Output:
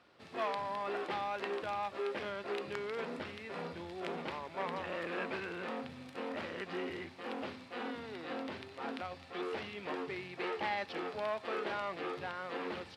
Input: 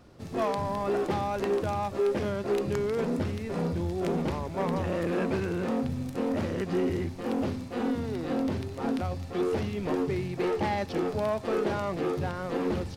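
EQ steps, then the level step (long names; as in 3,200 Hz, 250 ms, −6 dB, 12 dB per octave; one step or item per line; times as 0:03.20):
resonant band-pass 7,900 Hz, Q 1.1
high-frequency loss of the air 460 metres
+17.0 dB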